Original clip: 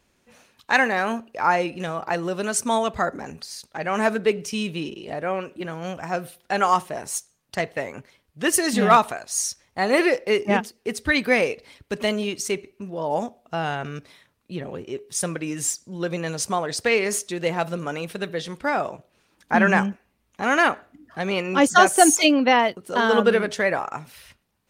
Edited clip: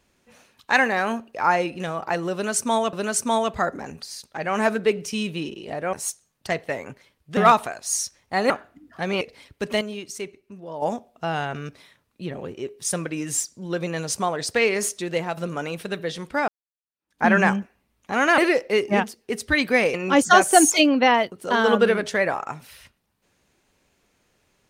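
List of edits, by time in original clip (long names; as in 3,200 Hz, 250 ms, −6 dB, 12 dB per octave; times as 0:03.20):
0:02.33–0:02.93: repeat, 2 plays
0:05.33–0:07.01: remove
0:08.45–0:08.82: remove
0:09.95–0:11.51: swap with 0:20.68–0:21.39
0:12.11–0:13.12: clip gain −7 dB
0:17.41–0:17.67: fade out, to −6 dB
0:18.78–0:19.53: fade in exponential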